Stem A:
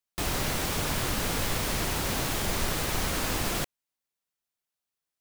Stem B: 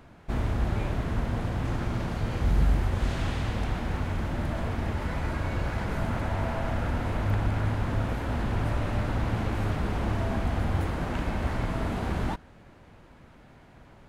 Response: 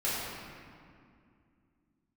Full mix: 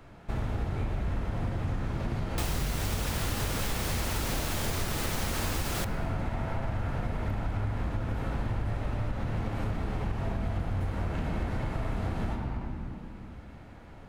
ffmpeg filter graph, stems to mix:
-filter_complex "[0:a]adelay=2200,volume=2.5dB,asplit=2[link_01][link_02];[link_02]volume=-22dB[link_03];[1:a]acrossover=split=200[link_04][link_05];[link_05]acompressor=threshold=-33dB:ratio=6[link_06];[link_04][link_06]amix=inputs=2:normalize=0,volume=-2.5dB,asplit=2[link_07][link_08];[link_08]volume=-7.5dB[link_09];[2:a]atrim=start_sample=2205[link_10];[link_03][link_09]amix=inputs=2:normalize=0[link_11];[link_11][link_10]afir=irnorm=-1:irlink=0[link_12];[link_01][link_07][link_12]amix=inputs=3:normalize=0,acompressor=threshold=-27dB:ratio=6"

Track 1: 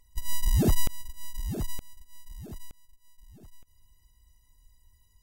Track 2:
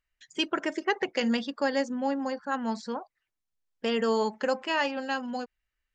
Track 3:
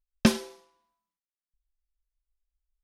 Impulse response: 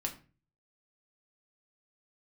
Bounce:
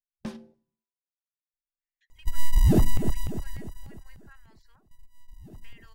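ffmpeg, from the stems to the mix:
-filter_complex "[0:a]adelay=2100,volume=3dB,asplit=3[link_01][link_02][link_03];[link_01]atrim=end=3.14,asetpts=PTS-STARTPTS,afade=type=out:start_time=3.136:duration=0.004:curve=hsin[link_04];[link_02]atrim=start=3.14:end=4.91,asetpts=PTS-STARTPTS,volume=0[link_05];[link_03]atrim=start=4.91,asetpts=PTS-STARTPTS,afade=type=in:duration=0.004:curve=hsin[link_06];[link_04][link_05][link_06]concat=n=3:v=0:a=1,asplit=3[link_07][link_08][link_09];[link_08]volume=-10.5dB[link_10];[link_09]volume=-7.5dB[link_11];[1:a]highpass=frequency=2000:width_type=q:width=2.9,asoftclip=type=tanh:threshold=-16.5dB,acompressor=threshold=-29dB:ratio=6,adelay=1800,volume=-18dB[link_12];[2:a]afwtdn=0.01,asoftclip=type=tanh:threshold=-15.5dB,volume=-15dB,asplit=2[link_13][link_14];[link_14]volume=-5.5dB[link_15];[3:a]atrim=start_sample=2205[link_16];[link_10][link_15]amix=inputs=2:normalize=0[link_17];[link_17][link_16]afir=irnorm=-1:irlink=0[link_18];[link_11]aecho=0:1:297|594|891|1188|1485|1782|2079:1|0.47|0.221|0.104|0.0488|0.0229|0.0108[link_19];[link_07][link_12][link_13][link_18][link_19]amix=inputs=5:normalize=0,highshelf=frequency=2400:gain=-9,alimiter=limit=-10.5dB:level=0:latency=1:release=117"

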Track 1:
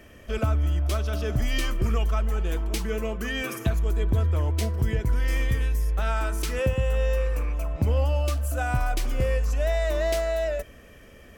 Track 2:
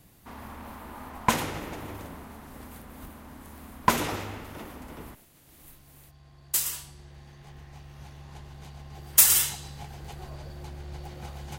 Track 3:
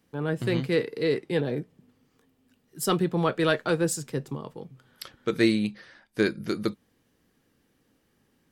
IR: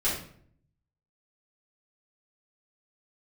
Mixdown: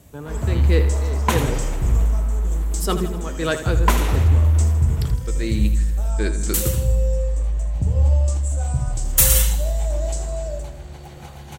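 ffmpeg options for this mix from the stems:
-filter_complex "[0:a]firequalizer=gain_entry='entry(140,0);entry(240,-11);entry(790,-10);entry(1800,-27);entry(7900,8);entry(11000,-24)':delay=0.05:min_phase=1,volume=1.5dB,asplit=3[link_01][link_02][link_03];[link_02]volume=-10dB[link_04];[link_03]volume=-9.5dB[link_05];[1:a]bandreject=frequency=5000:width=10,asoftclip=type=hard:threshold=-10.5dB,volume=3dB,asplit=2[link_06][link_07];[link_07]volume=-17dB[link_08];[2:a]tremolo=f=1.4:d=0.75,volume=2dB,asplit=2[link_09][link_10];[link_10]volume=-11.5dB[link_11];[3:a]atrim=start_sample=2205[link_12];[link_04][link_12]afir=irnorm=-1:irlink=0[link_13];[link_05][link_08][link_11]amix=inputs=3:normalize=0,aecho=0:1:80|160|240|320|400|480|560|640|720:1|0.58|0.336|0.195|0.113|0.0656|0.0381|0.0221|0.0128[link_14];[link_01][link_06][link_09][link_13][link_14]amix=inputs=5:normalize=0,highpass=53"

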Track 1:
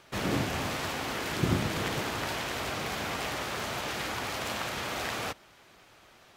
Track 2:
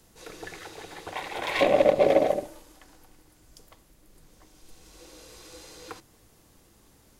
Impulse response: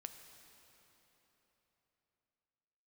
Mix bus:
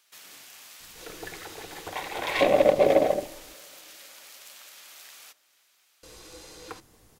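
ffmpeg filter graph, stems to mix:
-filter_complex "[0:a]aderivative,acompressor=threshold=-54dB:ratio=1.5,volume=-2.5dB,asplit=2[link_01][link_02];[link_02]volume=-5dB[link_03];[1:a]adelay=800,volume=-0.5dB,asplit=3[link_04][link_05][link_06];[link_04]atrim=end=3.54,asetpts=PTS-STARTPTS,afade=type=out:start_time=3.536:duration=0.004:curve=hsin[link_07];[link_05]atrim=start=3.54:end=6.03,asetpts=PTS-STARTPTS,volume=0[link_08];[link_06]atrim=start=6.03,asetpts=PTS-STARTPTS,afade=type=in:duration=0.004:curve=hsin[link_09];[link_07][link_08][link_09]concat=n=3:v=0:a=1,asplit=2[link_10][link_11];[link_11]volume=-14dB[link_12];[2:a]atrim=start_sample=2205[link_13];[link_03][link_12]amix=inputs=2:normalize=0[link_14];[link_14][link_13]afir=irnorm=-1:irlink=0[link_15];[link_01][link_10][link_15]amix=inputs=3:normalize=0"

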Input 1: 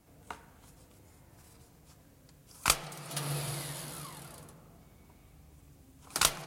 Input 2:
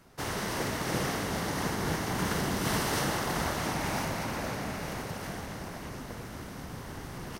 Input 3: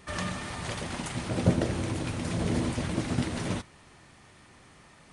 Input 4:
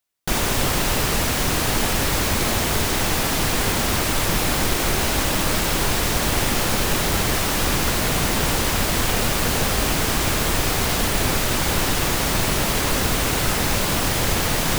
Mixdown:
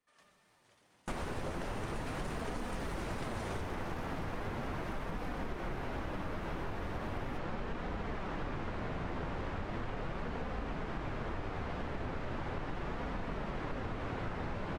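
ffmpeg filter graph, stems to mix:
ffmpeg -i stem1.wav -i stem2.wav -i stem3.wav -i stem4.wav -filter_complex "[1:a]acrossover=split=450[link_01][link_02];[link_02]acompressor=threshold=-33dB:ratio=6[link_03];[link_01][link_03]amix=inputs=2:normalize=0,asoftclip=type=tanh:threshold=-37.5dB,volume=-4dB[link_04];[2:a]highpass=390,volume=-2dB[link_05];[3:a]lowpass=1600,adelay=800,volume=-5.5dB[link_06];[link_04][link_05][link_06]amix=inputs=3:normalize=0,agate=range=-26dB:threshold=-31dB:ratio=16:detection=peak,flanger=delay=4:depth=8:regen=-44:speed=0.38:shape=sinusoidal,acompressor=threshold=-35dB:ratio=5" out.wav

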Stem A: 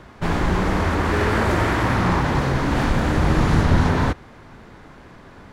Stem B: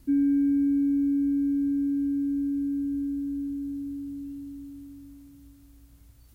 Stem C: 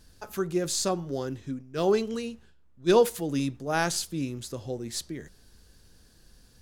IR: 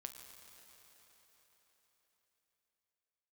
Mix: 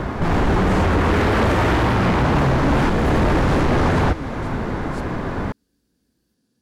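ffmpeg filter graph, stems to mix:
-filter_complex "[0:a]aeval=exprs='0.596*sin(PI/2*4.47*val(0)/0.596)':channel_layout=same,volume=2.5dB,asplit=2[link_01][link_02];[link_02]volume=-16.5dB[link_03];[1:a]tiltshelf=frequency=970:gain=-8.5,volume=-14.5dB[link_04];[2:a]highpass=130,equalizer=frequency=260:width=0.98:gain=14,volume=-15dB[link_05];[link_01][link_04]amix=inputs=2:normalize=0,highshelf=frequency=2000:gain=-12,acompressor=threshold=-15dB:ratio=6,volume=0dB[link_06];[3:a]atrim=start_sample=2205[link_07];[link_03][link_07]afir=irnorm=-1:irlink=0[link_08];[link_05][link_06][link_08]amix=inputs=3:normalize=0,alimiter=limit=-11.5dB:level=0:latency=1:release=385"

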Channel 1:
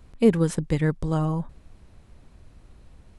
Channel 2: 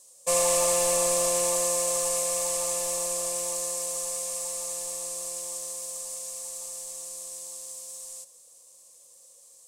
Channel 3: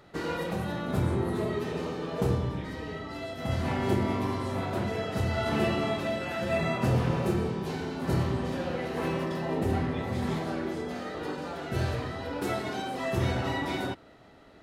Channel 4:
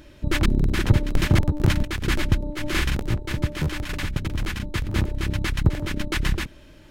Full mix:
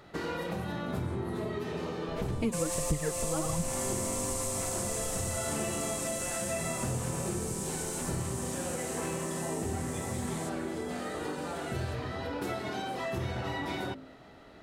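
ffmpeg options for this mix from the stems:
ffmpeg -i stem1.wav -i stem2.wav -i stem3.wav -i stem4.wav -filter_complex "[0:a]aphaser=in_gain=1:out_gain=1:delay=4.8:decay=0.79:speed=1.4:type=triangular,adelay=2200,volume=2.5dB[link_01];[1:a]adelay=2250,volume=1.5dB[link_02];[2:a]bandreject=frequency=52.46:width_type=h:width=4,bandreject=frequency=104.92:width_type=h:width=4,bandreject=frequency=157.38:width_type=h:width=4,bandreject=frequency=209.84:width_type=h:width=4,bandreject=frequency=262.3:width_type=h:width=4,bandreject=frequency=314.76:width_type=h:width=4,bandreject=frequency=367.22:width_type=h:width=4,bandreject=frequency=419.68:width_type=h:width=4,bandreject=frequency=472.14:width_type=h:width=4,bandreject=frequency=524.6:width_type=h:width=4,bandreject=frequency=577.06:width_type=h:width=4,volume=2dB[link_03];[3:a]adelay=1850,volume=-19dB[link_04];[link_01][link_02][link_03][link_04]amix=inputs=4:normalize=0,acompressor=threshold=-33dB:ratio=3" out.wav

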